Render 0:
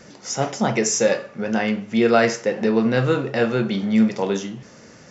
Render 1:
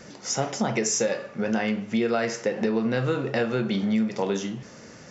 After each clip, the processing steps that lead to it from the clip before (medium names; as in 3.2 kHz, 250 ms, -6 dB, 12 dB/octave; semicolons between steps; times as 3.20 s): compression, threshold -21 dBFS, peak gain reduction 10.5 dB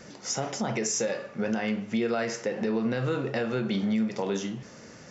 peak limiter -16.5 dBFS, peak gain reduction 4 dB; trim -2 dB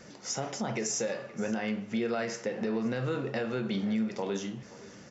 delay 524 ms -19 dB; trim -3.5 dB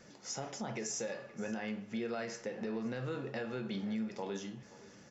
feedback comb 850 Hz, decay 0.28 s, mix 70%; trim +3 dB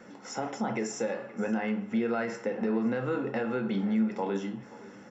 reverberation RT60 0.15 s, pre-delay 3 ms, DRR 12 dB